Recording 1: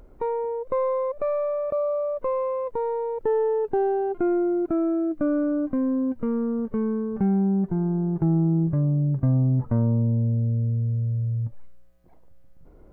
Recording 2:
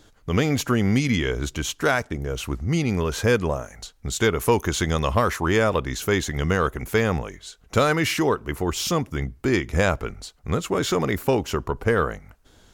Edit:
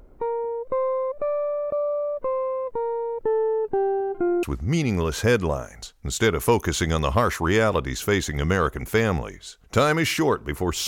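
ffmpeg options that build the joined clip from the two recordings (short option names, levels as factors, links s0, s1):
-filter_complex "[0:a]asplit=3[s0][s1][s2];[s0]afade=t=out:st=3.97:d=0.02[s3];[s1]aecho=1:1:270:0.0944,afade=t=in:st=3.97:d=0.02,afade=t=out:st=4.43:d=0.02[s4];[s2]afade=t=in:st=4.43:d=0.02[s5];[s3][s4][s5]amix=inputs=3:normalize=0,apad=whole_dur=10.87,atrim=end=10.87,atrim=end=4.432[s6];[1:a]atrim=start=2.428:end=8.87[s7];[s6][s7]acrossfade=d=0.004:c1=hsin:c2=hsin"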